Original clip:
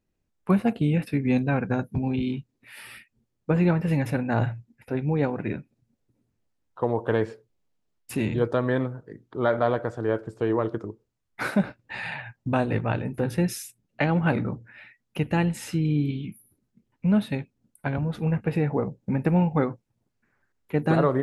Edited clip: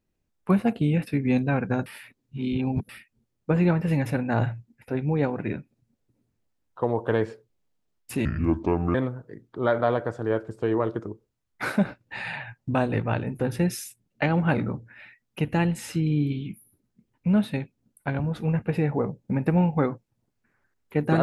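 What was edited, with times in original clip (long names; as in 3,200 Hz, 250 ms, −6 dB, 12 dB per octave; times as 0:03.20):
0:01.86–0:02.89: reverse
0:08.25–0:08.73: play speed 69%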